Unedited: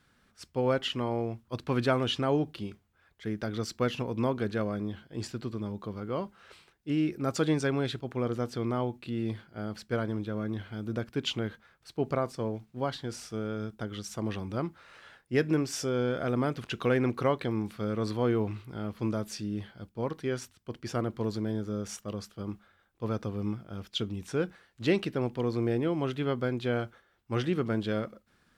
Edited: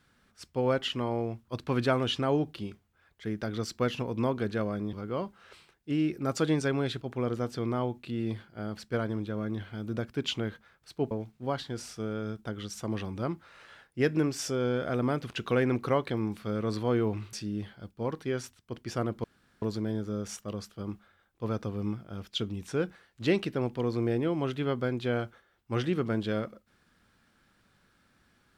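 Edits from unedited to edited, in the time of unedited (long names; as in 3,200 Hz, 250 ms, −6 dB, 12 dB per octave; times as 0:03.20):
0:04.93–0:05.92: remove
0:12.10–0:12.45: remove
0:18.67–0:19.31: remove
0:21.22: splice in room tone 0.38 s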